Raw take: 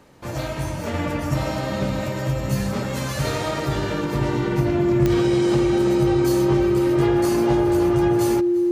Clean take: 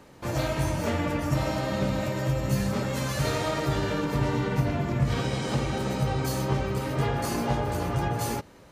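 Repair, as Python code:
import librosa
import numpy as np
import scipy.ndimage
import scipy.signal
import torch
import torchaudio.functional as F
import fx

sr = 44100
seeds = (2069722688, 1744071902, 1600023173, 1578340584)

y = fx.fix_declick_ar(x, sr, threshold=10.0)
y = fx.notch(y, sr, hz=350.0, q=30.0)
y = fx.fix_echo_inverse(y, sr, delay_ms=349, level_db=-21.5)
y = fx.gain(y, sr, db=fx.steps((0.0, 0.0), (0.94, -3.0)))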